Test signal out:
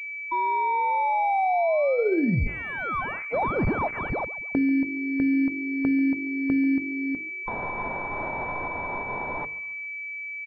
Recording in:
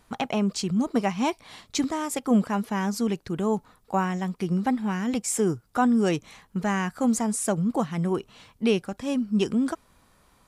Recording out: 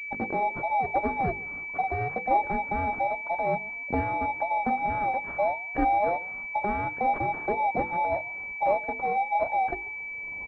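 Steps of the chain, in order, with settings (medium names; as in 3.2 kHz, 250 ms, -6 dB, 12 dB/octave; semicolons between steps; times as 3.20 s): every band turned upside down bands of 1 kHz; recorder AGC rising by 26 dB/s; level-controlled noise filter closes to 580 Hz, open at -19 dBFS; hum notches 50/100/150/200/250/300/350/400/450/500 Hz; bit crusher 11-bit; on a send: frequency-shifting echo 139 ms, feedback 40%, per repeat +47 Hz, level -20.5 dB; on the sum: class-D stage that switches slowly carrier 2.3 kHz; trim -1.5 dB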